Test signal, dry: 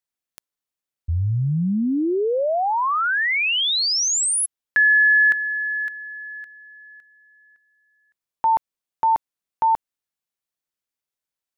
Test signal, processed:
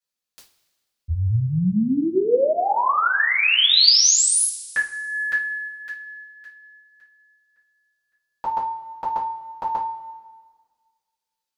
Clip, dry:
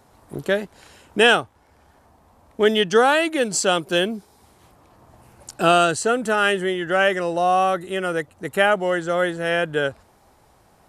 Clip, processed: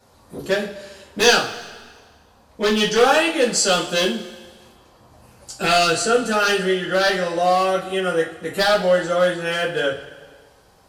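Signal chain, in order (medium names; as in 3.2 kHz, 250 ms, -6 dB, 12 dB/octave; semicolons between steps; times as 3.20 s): one-sided wavefolder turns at -11 dBFS; peaking EQ 4.4 kHz +6.5 dB 1.1 oct; two-slope reverb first 0.29 s, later 1.6 s, from -18 dB, DRR -8 dB; trim -8 dB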